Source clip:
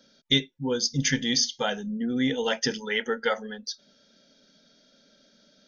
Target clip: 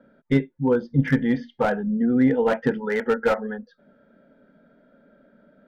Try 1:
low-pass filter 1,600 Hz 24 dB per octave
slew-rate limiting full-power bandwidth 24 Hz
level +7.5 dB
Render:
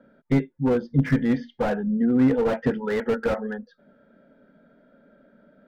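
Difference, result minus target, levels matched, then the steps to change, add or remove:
slew-rate limiting: distortion +8 dB
change: slew-rate limiting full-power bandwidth 50 Hz

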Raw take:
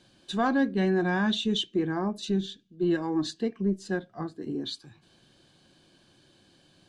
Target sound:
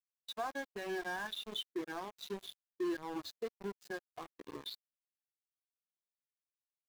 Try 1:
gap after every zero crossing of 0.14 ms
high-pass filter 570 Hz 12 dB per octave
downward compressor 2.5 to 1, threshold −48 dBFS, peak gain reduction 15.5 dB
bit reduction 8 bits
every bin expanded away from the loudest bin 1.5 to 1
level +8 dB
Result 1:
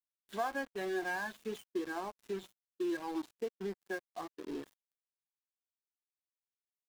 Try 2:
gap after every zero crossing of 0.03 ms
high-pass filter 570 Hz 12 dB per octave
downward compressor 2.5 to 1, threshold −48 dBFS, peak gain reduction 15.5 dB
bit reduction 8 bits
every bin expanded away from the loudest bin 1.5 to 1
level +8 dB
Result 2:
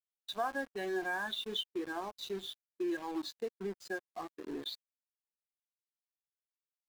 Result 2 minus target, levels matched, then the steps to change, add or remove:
downward compressor: peak gain reduction −4 dB
change: downward compressor 2.5 to 1, threshold −55 dBFS, peak gain reduction 19.5 dB

